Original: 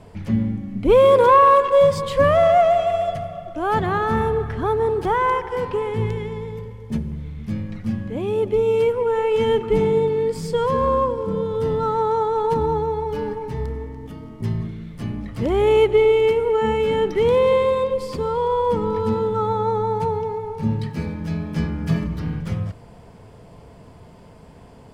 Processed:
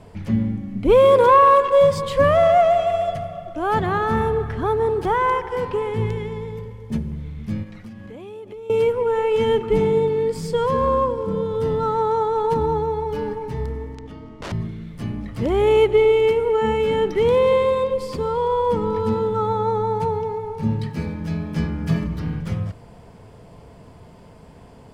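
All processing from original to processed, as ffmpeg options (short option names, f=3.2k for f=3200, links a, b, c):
-filter_complex "[0:a]asettb=1/sr,asplit=3[a][b][c];[a]atrim=end=7.634[d];[b]atrim=start=7.63:end=8.7,asetpts=PTS-STARTPTS,afade=t=in:d=0.004:c=qsin,afade=t=out:st=1.066:d=0.004:c=qsin,lowshelf=f=330:g=-8.5,acompressor=threshold=-33dB:ratio=12:attack=3.2:release=140:knee=1:detection=peak[e];[c]atrim=start=8.696[f];[d][e]acrossfade=d=0.004:c1=hsin:c2=qsin[g];[g][f]acrossfade=d=0.004:c1=qsin:c2=hsin,asettb=1/sr,asplit=3[h][i][j];[h]atrim=end=13.954[k];[i]atrim=start=13.95:end=14.52,asetpts=PTS-STARTPTS,afade=t=in:d=0.004:c=qsin,afade=t=out:st=0.566:d=0.004:c=qsin,equalizer=f=160:w=1.4:g=-5,aeval=exprs='(mod(20*val(0)+1,2)-1)/20':c=same,lowpass=5.8k[l];[j]atrim=start=14.516[m];[k][l]acrossfade=d=0.004:c1=hsin:c2=qsin[n];[n][m]acrossfade=d=0.004:c1=qsin:c2=hsin"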